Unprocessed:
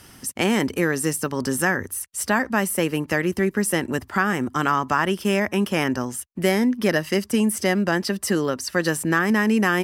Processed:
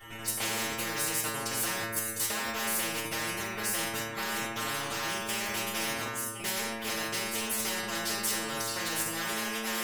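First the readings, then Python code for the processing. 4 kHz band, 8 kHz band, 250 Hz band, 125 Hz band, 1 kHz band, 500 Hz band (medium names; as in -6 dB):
-1.5 dB, -2.0 dB, -18.0 dB, -16.0 dB, -9.5 dB, -15.0 dB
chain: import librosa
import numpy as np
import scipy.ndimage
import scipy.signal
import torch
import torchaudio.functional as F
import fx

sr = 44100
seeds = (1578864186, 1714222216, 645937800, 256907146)

p1 = fx.wiener(x, sr, points=9)
p2 = fx.low_shelf(p1, sr, hz=260.0, db=3.0)
p3 = fx.room_shoebox(p2, sr, seeds[0], volume_m3=60.0, walls='mixed', distance_m=3.3)
p4 = 10.0 ** (-7.0 / 20.0) * np.tanh(p3 / 10.0 ** (-7.0 / 20.0))
p5 = p3 + (p4 * 10.0 ** (-5.5 / 20.0))
p6 = fx.tilt_eq(p5, sr, slope=2.0)
p7 = p6 + fx.echo_single(p6, sr, ms=1056, db=-23.0, dry=0)
p8 = fx.level_steps(p7, sr, step_db=11)
p9 = fx.stiff_resonator(p8, sr, f0_hz=110.0, decay_s=0.79, stiffness=0.002)
p10 = fx.spectral_comp(p9, sr, ratio=4.0)
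y = p10 * 10.0 ** (-8.5 / 20.0)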